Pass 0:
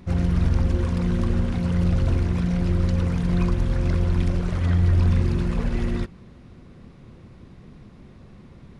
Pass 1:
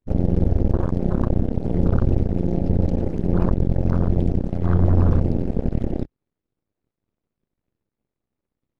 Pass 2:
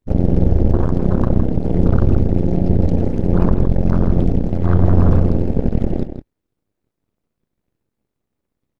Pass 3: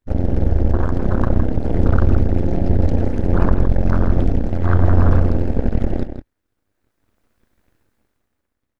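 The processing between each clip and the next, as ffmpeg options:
-af "aeval=exprs='0.355*(cos(1*acos(clip(val(0)/0.355,-1,1)))-cos(1*PI/2))+0.0282*(cos(5*acos(clip(val(0)/0.355,-1,1)))-cos(5*PI/2))+0.0794*(cos(6*acos(clip(val(0)/0.355,-1,1)))-cos(6*PI/2))+0.0708*(cos(7*acos(clip(val(0)/0.355,-1,1)))-cos(7*PI/2))':c=same,afwtdn=0.0447"
-filter_complex "[0:a]asplit=2[s0][s1];[s1]adelay=163.3,volume=0.355,highshelf=f=4000:g=-3.67[s2];[s0][s2]amix=inputs=2:normalize=0,volume=1.68"
-af "equalizer=f=160:t=o:w=0.67:g=-9,equalizer=f=400:t=o:w=0.67:g=-4,equalizer=f=1600:t=o:w=0.67:g=6,dynaudnorm=f=170:g=11:m=5.62,volume=0.891"

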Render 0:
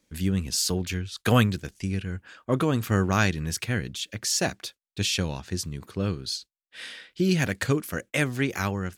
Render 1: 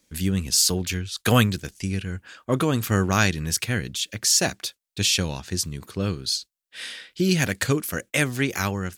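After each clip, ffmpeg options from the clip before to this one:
-af "highshelf=f=3500:g=7,volume=1.19"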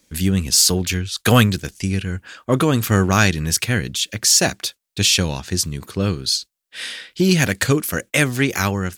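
-af "acontrast=45"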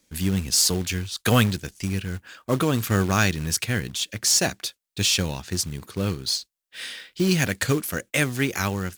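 -af "acrusher=bits=4:mode=log:mix=0:aa=0.000001,volume=0.531"

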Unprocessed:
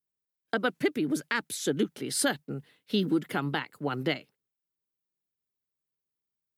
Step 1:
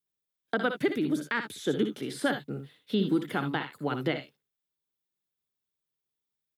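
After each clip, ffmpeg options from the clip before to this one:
-filter_complex "[0:a]equalizer=f=3500:w=6.5:g=8,asplit=2[s0][s1];[s1]aecho=0:1:60|74:0.316|0.2[s2];[s0][s2]amix=inputs=2:normalize=0,acrossover=split=2500[s3][s4];[s4]acompressor=threshold=0.00708:ratio=4:attack=1:release=60[s5];[s3][s5]amix=inputs=2:normalize=0"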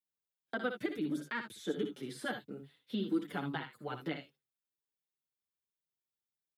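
-filter_complex "[0:a]asplit=2[s0][s1];[s1]adelay=6.1,afreqshift=-1.3[s2];[s0][s2]amix=inputs=2:normalize=1,volume=0.531"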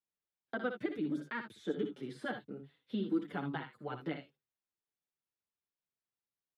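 -af "aemphasis=mode=reproduction:type=75kf"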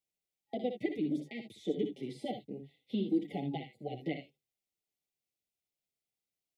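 -af "afftfilt=real='re*(1-between(b*sr/4096,830,1900))':imag='im*(1-between(b*sr/4096,830,1900))':win_size=4096:overlap=0.75,volume=1.33"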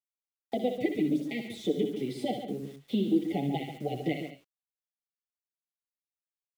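-filter_complex "[0:a]asplit=2[s0][s1];[s1]acompressor=threshold=0.00708:ratio=8,volume=1.26[s2];[s0][s2]amix=inputs=2:normalize=0,acrusher=bits=9:mix=0:aa=0.000001,asplit=2[s3][s4];[s4]adelay=139.9,volume=0.355,highshelf=f=4000:g=-3.15[s5];[s3][s5]amix=inputs=2:normalize=0,volume=1.41"

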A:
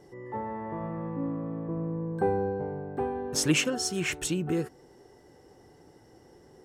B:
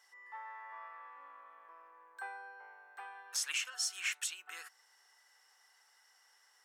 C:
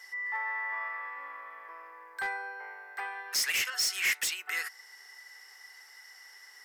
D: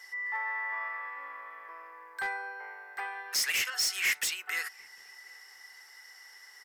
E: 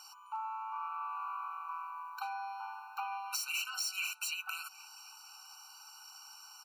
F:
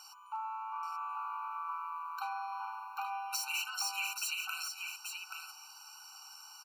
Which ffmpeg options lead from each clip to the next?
-af "highpass=f=1200:w=0.5412,highpass=f=1200:w=1.3066,alimiter=limit=0.0631:level=0:latency=1:release=357"
-af "asoftclip=type=hard:threshold=0.0119,equalizer=f=400:t=o:w=0.33:g=7,equalizer=f=2000:t=o:w=0.33:g=12,equalizer=f=5000:t=o:w=0.33:g=8,equalizer=f=12500:t=o:w=0.33:g=9,volume=2.66"
-filter_complex "[0:a]asplit=2[s0][s1];[s1]adelay=747,lowpass=f=990:p=1,volume=0.0794,asplit=2[s2][s3];[s3]adelay=747,lowpass=f=990:p=1,volume=0.38,asplit=2[s4][s5];[s5]adelay=747,lowpass=f=990:p=1,volume=0.38[s6];[s0][s2][s4][s6]amix=inputs=4:normalize=0"
-af "acompressor=threshold=0.0126:ratio=6,afftfilt=real='re*eq(mod(floor(b*sr/1024/770),2),1)':imag='im*eq(mod(floor(b*sr/1024/770),2),1)':win_size=1024:overlap=0.75,volume=2.11"
-af "aecho=1:1:830:0.531"

